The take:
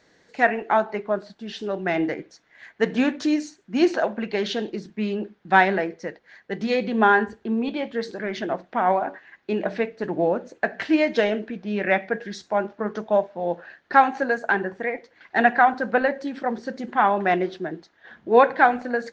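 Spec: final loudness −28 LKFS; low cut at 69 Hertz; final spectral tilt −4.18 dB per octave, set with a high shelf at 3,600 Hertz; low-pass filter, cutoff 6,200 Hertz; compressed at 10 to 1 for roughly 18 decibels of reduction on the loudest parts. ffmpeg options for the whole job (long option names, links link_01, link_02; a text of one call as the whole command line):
ffmpeg -i in.wav -af "highpass=69,lowpass=6200,highshelf=frequency=3600:gain=-8,acompressor=threshold=-29dB:ratio=10,volume=7dB" out.wav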